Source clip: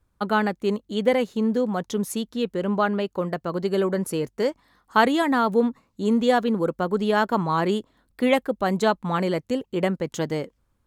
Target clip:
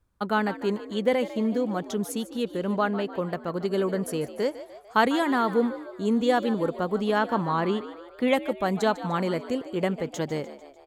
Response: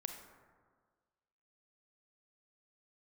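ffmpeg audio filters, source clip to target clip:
-filter_complex "[0:a]asettb=1/sr,asplit=3[a][b][c];[a]atrim=end=7.184[d];[b]atrim=start=7.18:end=8.28,asetpts=PTS-STARTPTS,afade=t=in:d=0.004:c=qsin,afade=t=out:st=1.096:d=0.004:c=qsin,acrossover=split=4700[e][f];[f]acompressor=threshold=-56dB:ratio=4:attack=1:release=60[g];[e][g]amix=inputs=2:normalize=0[h];[c]atrim=start=8.276[i];[d][h]acrossfade=d=0.004:c1=hsin:c2=qsin[j];[j][i]acrossfade=d=0.004:c1=qsin:c2=hsin,asplit=6[k][l][m][n][o][p];[l]adelay=149,afreqshift=64,volume=-14.5dB[q];[m]adelay=298,afreqshift=128,volume=-19.9dB[r];[n]adelay=447,afreqshift=192,volume=-25.2dB[s];[o]adelay=596,afreqshift=256,volume=-30.6dB[t];[p]adelay=745,afreqshift=320,volume=-35.9dB[u];[k][q][r][s][t][u]amix=inputs=6:normalize=0,volume=-3dB"

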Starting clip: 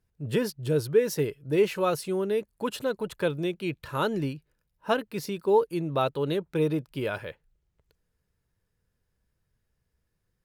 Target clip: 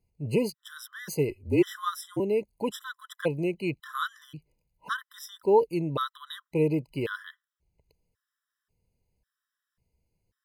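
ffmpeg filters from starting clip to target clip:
-filter_complex "[0:a]asettb=1/sr,asplit=3[a][b][c];[a]atrim=end=1.294[d];[b]atrim=start=1.29:end=2.2,asetpts=PTS-STARTPTS,afade=t=in:d=0.004:c=qsin,afade=t=out:st=0.906:d=0.004:c=qsin,afreqshift=-46[e];[c]atrim=start=2.196[f];[d][e]acrossfade=d=0.004:c1=hsin:c2=qsin[g];[g][f]acrossfade=d=0.004:c1=qsin:c2=hsin,afftfilt=real='re*gt(sin(2*PI*0.92*pts/sr)*(1-2*mod(floor(b*sr/1024/1000),2)),0)':imag='im*gt(sin(2*PI*0.92*pts/sr)*(1-2*mod(floor(b*sr/1024/1000),2)),0)':win_size=1024:overlap=0.75,volume=1dB"

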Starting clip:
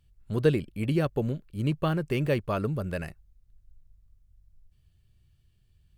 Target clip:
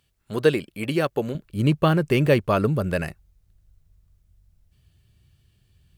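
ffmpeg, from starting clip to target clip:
-af "asetnsamples=n=441:p=0,asendcmd='1.35 highpass f 93',highpass=f=510:p=1,volume=8.5dB"

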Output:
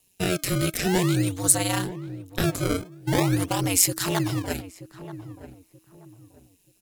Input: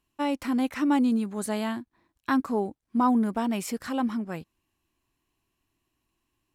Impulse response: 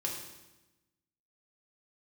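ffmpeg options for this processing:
-filter_complex "[0:a]asplit=2[a][b];[b]alimiter=level_in=0.5dB:limit=-24dB:level=0:latency=1,volume=-0.5dB,volume=1dB[c];[a][c]amix=inputs=2:normalize=0,crystalizer=i=5:c=0,aeval=exprs='val(0)*sin(2*PI*96*n/s)':c=same,bandreject=f=335.9:t=h:w=4,bandreject=f=671.8:t=h:w=4,acrossover=split=250|1900[d][e][f];[e]acrusher=samples=26:mix=1:aa=0.000001:lfo=1:lforange=41.6:lforate=0.48[g];[d][g][f]amix=inputs=3:normalize=0,asetrate=42336,aresample=44100,asplit=2[h][i];[i]adelay=931,lowpass=f=880:p=1,volume=-12.5dB,asplit=2[j][k];[k]adelay=931,lowpass=f=880:p=1,volume=0.32,asplit=2[l][m];[m]adelay=931,lowpass=f=880:p=1,volume=0.32[n];[h][j][l][n]amix=inputs=4:normalize=0"

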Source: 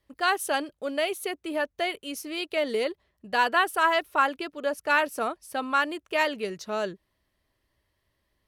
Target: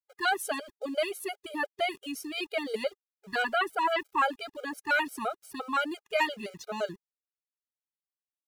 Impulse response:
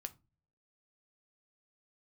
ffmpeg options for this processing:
-filter_complex "[0:a]asettb=1/sr,asplit=3[a][b][c];[a]atrim=end=3.424[d];[b]atrim=start=3.42:end=4.06,asetpts=PTS-STARTPTS,afade=t=in:d=0.004:c=qsin,afade=t=out:st=0.636:d=0.004:c=qsin,acrossover=split=3900[e][f];[f]acompressor=threshold=-46dB:ratio=4:attack=1:release=60[g];[e][g]amix=inputs=2:normalize=0[h];[c]atrim=start=4.056[i];[d][h]acrossfade=d=0.004:c1=hsin:c2=qsin[j];[j][i]acrossfade=d=0.004:c1=qsin:c2=hsin,aeval=exprs='val(0)*gte(abs(val(0)),0.00398)':c=same,afftfilt=real='re*gt(sin(2*PI*5.8*pts/sr)*(1-2*mod(floor(b*sr/1024/410),2)),0)':imag='im*gt(sin(2*PI*5.8*pts/sr)*(1-2*mod(floor(b*sr/1024/410),2)),0)':win_size=1024:overlap=0.75"

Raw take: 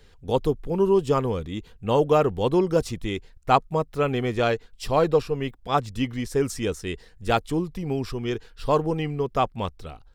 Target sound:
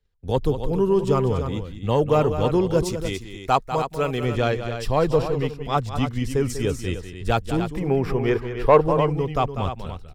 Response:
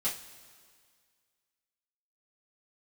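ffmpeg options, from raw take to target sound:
-filter_complex "[0:a]asettb=1/sr,asplit=3[a][b][c];[a]atrim=end=2.844[d];[b]atrim=start=2.84:end=4.23,asetpts=PTS-STARTPTS,afade=t=in:d=0.004:c=qsin,afade=t=out:st=1.386:d=0.004:c=qsin,bass=f=250:g=-6,treble=f=4k:g=6[e];[c]atrim=start=4.226[f];[d][e]acrossfade=d=0.004:c1=hsin:c2=qsin[g];[g][f]acrossfade=d=0.004:c1=qsin:c2=hsin,agate=range=-26dB:threshold=-47dB:ratio=16:detection=peak,acrossover=split=140[h][i];[h]acontrast=90[j];[j][i]amix=inputs=2:normalize=0,asettb=1/sr,asplit=3[k][l][m];[k]atrim=end=7.694[n];[l]atrim=start=7.69:end=8.81,asetpts=PTS-STARTPTS,afade=t=in:d=0.004:c=qsin,afade=t=out:st=1.116:d=0.004:c=qsin,equalizer=f=500:t=o:w=1:g=9,equalizer=f=1k:t=o:w=1:g=6,equalizer=f=2k:t=o:w=1:g=9,equalizer=f=4k:t=o:w=1:g=-7,equalizer=f=8k:t=o:w=1:g=-5[o];[m]atrim=start=8.806[p];[n][o]acrossfade=d=0.004:c1=hsin:c2=qsin[q];[q][p]acrossfade=d=0.004:c1=qsin:c2=hsin,aecho=1:1:195.3|288.6:0.282|0.316,asoftclip=type=tanh:threshold=-4.5dB"

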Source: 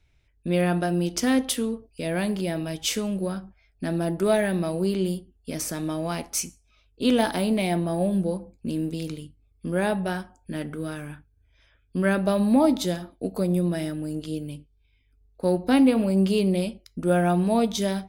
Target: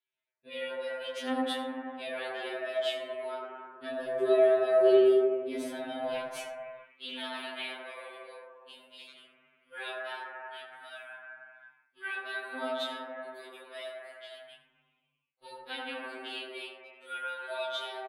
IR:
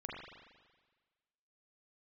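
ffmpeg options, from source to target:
-filter_complex "[0:a]asetnsamples=n=441:p=0,asendcmd='3.99 highpass f 280;6.06 highpass f 1300',highpass=590,agate=range=-13dB:threshold=-51dB:ratio=16:detection=peak,highshelf=f=4.5k:t=q:w=3:g=-9,alimiter=limit=-17.5dB:level=0:latency=1:release=233,flanger=delay=18.5:depth=4.6:speed=0.36,aecho=1:1:82:0.188[a];[1:a]atrim=start_sample=2205,afade=t=out:st=0.43:d=0.01,atrim=end_sample=19404,asetrate=22491,aresample=44100[b];[a][b]afir=irnorm=-1:irlink=0,afftfilt=real='re*2.45*eq(mod(b,6),0)':imag='im*2.45*eq(mod(b,6),0)':win_size=2048:overlap=0.75"

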